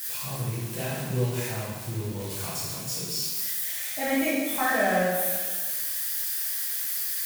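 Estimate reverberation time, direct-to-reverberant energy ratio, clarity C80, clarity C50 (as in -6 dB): 1.4 s, -8.0 dB, 2.0 dB, -1.5 dB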